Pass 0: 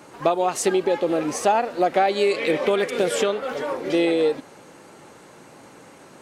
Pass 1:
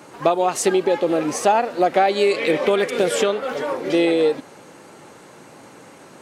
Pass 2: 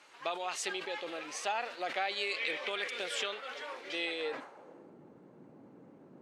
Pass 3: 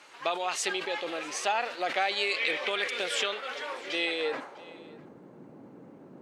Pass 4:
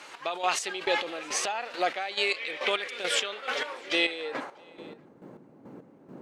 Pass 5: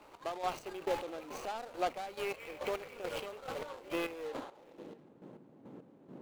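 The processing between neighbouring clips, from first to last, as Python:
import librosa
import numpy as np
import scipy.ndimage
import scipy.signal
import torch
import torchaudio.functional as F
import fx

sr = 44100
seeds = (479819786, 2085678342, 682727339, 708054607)

y1 = scipy.signal.sosfilt(scipy.signal.butter(2, 65.0, 'highpass', fs=sr, output='sos'), x)
y1 = y1 * librosa.db_to_amplitude(2.5)
y2 = fx.filter_sweep_bandpass(y1, sr, from_hz=3000.0, to_hz=220.0, start_s=4.16, end_s=4.95, q=0.99)
y2 = fx.sustainer(y2, sr, db_per_s=92.0)
y2 = y2 * librosa.db_to_amplitude(-7.0)
y3 = y2 + 10.0 ** (-22.5 / 20.0) * np.pad(y2, (int(651 * sr / 1000.0), 0))[:len(y2)]
y3 = y3 * librosa.db_to_amplitude(6.0)
y4 = fx.rider(y3, sr, range_db=3, speed_s=0.5)
y4 = fx.chopper(y4, sr, hz=2.3, depth_pct=65, duty_pct=35)
y4 = y4 * librosa.db_to_amplitude(5.0)
y5 = scipy.signal.medfilt(y4, 25)
y5 = y5 * librosa.db_to_amplitude(-4.5)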